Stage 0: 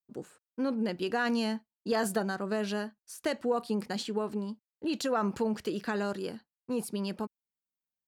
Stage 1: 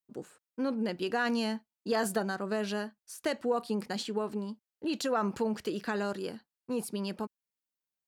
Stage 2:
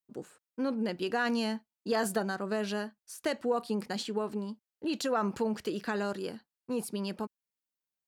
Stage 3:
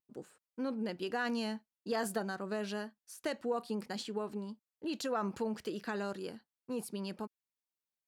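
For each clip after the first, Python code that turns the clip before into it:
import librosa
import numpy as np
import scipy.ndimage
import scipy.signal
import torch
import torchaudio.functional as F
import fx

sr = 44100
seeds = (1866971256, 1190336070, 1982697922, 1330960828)

y1 = fx.low_shelf(x, sr, hz=200.0, db=-3.0)
y2 = y1
y3 = fx.vibrato(y2, sr, rate_hz=1.1, depth_cents=20.0)
y3 = F.gain(torch.from_numpy(y3), -5.0).numpy()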